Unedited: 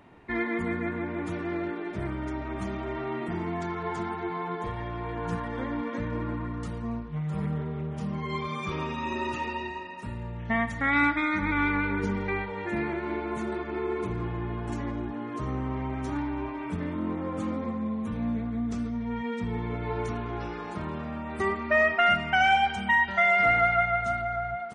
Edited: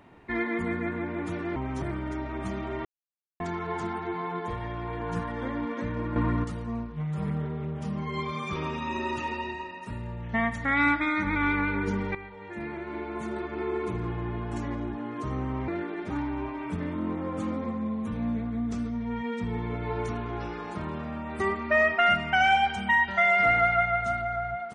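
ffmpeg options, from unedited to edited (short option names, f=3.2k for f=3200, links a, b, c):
-filter_complex "[0:a]asplit=10[a][b][c][d][e][f][g][h][i][j];[a]atrim=end=1.562[k];[b]atrim=start=15.838:end=16.102[l];[c]atrim=start=1.978:end=3.01,asetpts=PTS-STARTPTS,afade=t=out:st=1.028:d=0.004:c=hsin[m];[d]atrim=start=3.01:end=3.56,asetpts=PTS-STARTPTS,volume=0[n];[e]atrim=start=3.56:end=6.322,asetpts=PTS-STARTPTS,afade=t=in:d=0.004:c=hsin[o];[f]atrim=start=6.318:end=6.602,asetpts=PTS-STARTPTS,volume=7.5dB[p];[g]atrim=start=6.598:end=12.31,asetpts=PTS-STARTPTS,afade=t=out:st=5.708:d=0.004:c=hsin:silence=0.223872[q];[h]atrim=start=12.31:end=15.842,asetpts=PTS-STARTPTS,afade=t=in:d=1.51:silence=0.223872[r];[i]atrim=start=1.558:end=1.982[s];[j]atrim=start=16.098[t];[k][l]acrossfade=d=0.004:c1=hsin:c2=hsin[u];[m][n][o]concat=n=3:v=0:a=1[v];[u][v]acrossfade=d=0.004:c1=hsin:c2=hsin[w];[w][p]acrossfade=d=0.004:c1=hsin:c2=hsin[x];[q][r]concat=n=2:v=0:a=1[y];[x][y]acrossfade=d=0.004:c1=hsin:c2=hsin[z];[z][s]acrossfade=d=0.004:c1=hsin:c2=hsin[aa];[aa][t]acrossfade=d=0.004:c1=hsin:c2=hsin"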